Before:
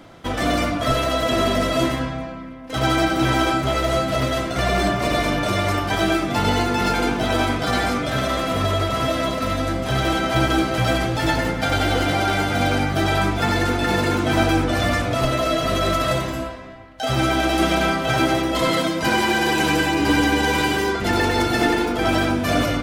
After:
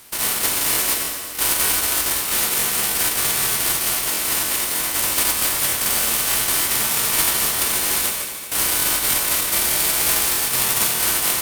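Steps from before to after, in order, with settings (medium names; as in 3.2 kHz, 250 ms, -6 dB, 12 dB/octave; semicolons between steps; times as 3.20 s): spectral contrast reduction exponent 0.18; peaking EQ 5.4 kHz +12 dB 0.22 oct; ring modulator 810 Hz; on a send: multi-head delay 153 ms, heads second and third, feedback 64%, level -13 dB; on the sum: speed mistake 7.5 ips tape played at 15 ips; crackling interface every 0.31 s, samples 1024, repeat, from 0.72 s; trim +1.5 dB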